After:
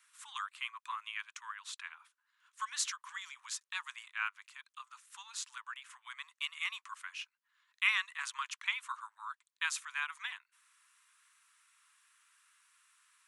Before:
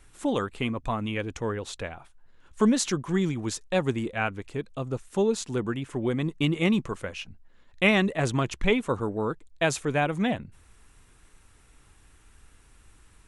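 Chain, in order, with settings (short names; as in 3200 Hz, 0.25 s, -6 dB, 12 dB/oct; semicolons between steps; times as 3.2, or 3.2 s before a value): steep high-pass 1000 Hz 72 dB/oct; gain -5.5 dB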